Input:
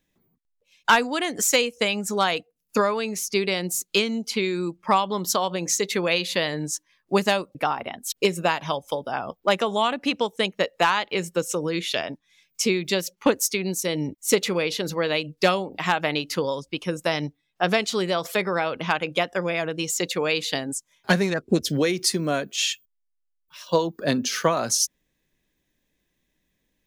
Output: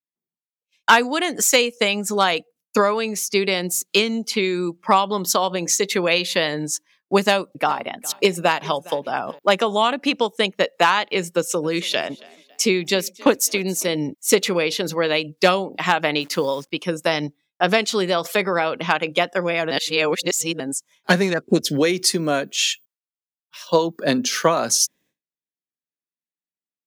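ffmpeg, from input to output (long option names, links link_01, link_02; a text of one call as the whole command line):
ffmpeg -i in.wav -filter_complex "[0:a]asettb=1/sr,asplit=3[link_01][link_02][link_03];[link_01]atrim=end=7.254[link_04];[link_02]atrim=start=7.25:end=9.39,asetpts=PTS-STARTPTS,afade=type=in:duration=0.004:curve=qsin,afade=type=out:start_time=2.136:duration=0.004:curve=qsin,aecho=1:1:410|820:0.0794|0.0246,atrim=end_sample=94374[link_05];[link_03]atrim=start=9.386[link_06];[link_04][link_05]acrossfade=duration=0.004:curve1=hsin:curve2=qsin[link_07];[link_07][link_06]acrossfade=duration=0.004:curve1=qsin:curve2=hsin,asettb=1/sr,asplit=3[link_08][link_09][link_10];[link_08]atrim=end=11.304[link_11];[link_09]atrim=start=11.3:end=13.95,asetpts=PTS-STARTPTS,afade=type=in:duration=0.004:curve=qsin,afade=type=out:start_time=2.646:duration=0.004:curve=qsin,asplit=4[link_12][link_13][link_14][link_15];[link_13]adelay=275,afreqshift=35,volume=-23.5dB[link_16];[link_14]adelay=550,afreqshift=70,volume=-30.2dB[link_17];[link_15]adelay=825,afreqshift=105,volume=-37dB[link_18];[link_12][link_16][link_17][link_18]amix=inputs=4:normalize=0,atrim=end_sample=116865[link_19];[link_10]atrim=start=13.946[link_20];[link_11][link_19]acrossfade=duration=0.004:curve1=hsin:curve2=qsin[link_21];[link_21][link_20]acrossfade=duration=0.004:curve1=qsin:curve2=hsin,asettb=1/sr,asplit=3[link_22][link_23][link_24];[link_22]atrim=end=16.214[link_25];[link_23]atrim=start=16.21:end=16.71,asetpts=PTS-STARTPTS,afade=type=in:duration=0.004:curve=qsin,afade=type=out:start_time=0.496:duration=0.004:curve=qsin,acrusher=bits=9:dc=4:mix=0:aa=0.000001[link_26];[link_24]atrim=start=16.706[link_27];[link_25][link_26]acrossfade=duration=0.004:curve1=hsin:curve2=qsin[link_28];[link_28][link_27]acrossfade=duration=0.004:curve1=qsin:curve2=hsin,asplit=3[link_29][link_30][link_31];[link_29]atrim=end=19.712[link_32];[link_30]atrim=start=19.708:end=20.602,asetpts=PTS-STARTPTS,areverse[link_33];[link_31]atrim=start=20.598[link_34];[link_32][link_33]acrossfade=duration=0.004:curve1=hsin:curve2=hsin[link_35];[link_35][link_34]acrossfade=duration=0.004:curve1=hsin:curve2=hsin,highpass=160,agate=range=-33dB:threshold=-51dB:ratio=3:detection=peak,volume=4dB" out.wav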